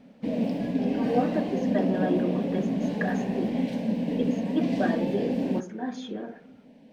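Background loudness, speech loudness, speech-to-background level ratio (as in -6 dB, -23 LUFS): -28.0 LUFS, -32.5 LUFS, -4.5 dB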